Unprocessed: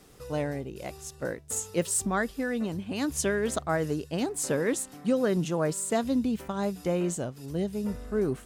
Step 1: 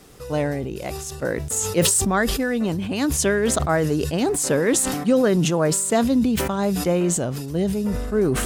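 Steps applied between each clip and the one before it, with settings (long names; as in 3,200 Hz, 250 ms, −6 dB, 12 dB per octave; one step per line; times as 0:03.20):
level that may fall only so fast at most 34 dB per second
level +7 dB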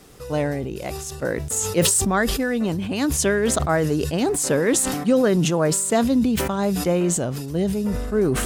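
no processing that can be heard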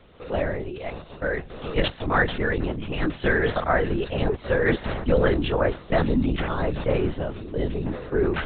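dynamic equaliser 1,700 Hz, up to +5 dB, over −38 dBFS, Q 1.8
high-pass filter 210 Hz
linear-prediction vocoder at 8 kHz whisper
level −1.5 dB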